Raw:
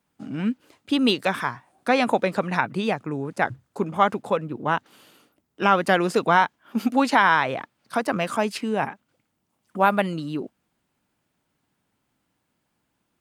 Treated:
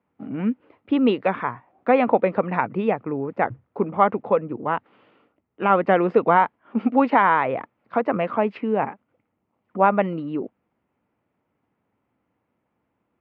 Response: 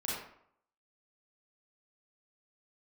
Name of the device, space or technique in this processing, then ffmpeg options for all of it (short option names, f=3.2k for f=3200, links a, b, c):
bass cabinet: -filter_complex "[0:a]highpass=61,equalizer=f=150:t=q:w=4:g=-5,equalizer=f=480:t=q:w=4:g=4,equalizer=f=1.6k:t=q:w=4:g=-7,lowpass=f=2.2k:w=0.5412,lowpass=f=2.2k:w=1.3066,asettb=1/sr,asplit=3[a][b][c];[a]atrim=end=4.634[d];[b]atrim=start=4.63:end=5.7,asetpts=PTS-STARTPTS,afade=t=in:d=0.004:c=qsin,afade=t=out:st=1.066:d=0.004:c=qsin,equalizer=f=350:w=0.41:g=-3.5[e];[c]atrim=start=5.696[f];[d][e]acrossfade=d=0.004:c1=hsin:c2=qsin[g];[g][f]acrossfade=d=0.004:c1=qsin:c2=hsin,volume=2dB"